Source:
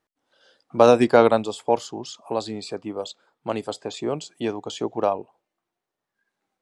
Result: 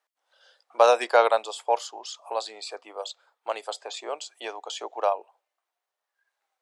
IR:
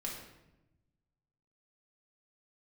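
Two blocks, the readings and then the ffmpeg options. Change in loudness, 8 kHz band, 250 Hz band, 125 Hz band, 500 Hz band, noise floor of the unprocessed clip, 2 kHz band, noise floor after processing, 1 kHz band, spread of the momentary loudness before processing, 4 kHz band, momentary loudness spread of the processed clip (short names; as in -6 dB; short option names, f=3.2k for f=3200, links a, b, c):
-3.5 dB, 0.0 dB, -21.5 dB, under -40 dB, -4.5 dB, -85 dBFS, 0.0 dB, under -85 dBFS, -0.5 dB, 17 LU, 0.0 dB, 17 LU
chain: -af "highpass=f=570:w=0.5412,highpass=f=570:w=1.3066"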